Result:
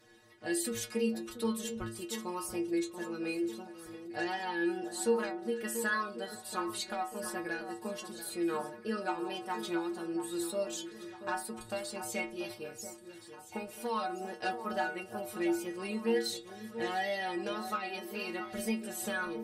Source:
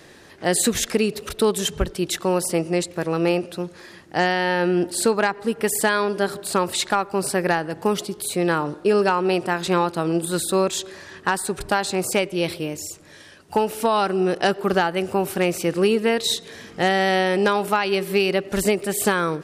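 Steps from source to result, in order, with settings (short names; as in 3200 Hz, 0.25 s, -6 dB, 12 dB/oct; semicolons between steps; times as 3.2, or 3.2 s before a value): wow and flutter 86 cents; metallic resonator 110 Hz, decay 0.44 s, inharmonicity 0.008; echo with dull and thin repeats by turns 0.685 s, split 1500 Hz, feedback 62%, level -10 dB; gain -3 dB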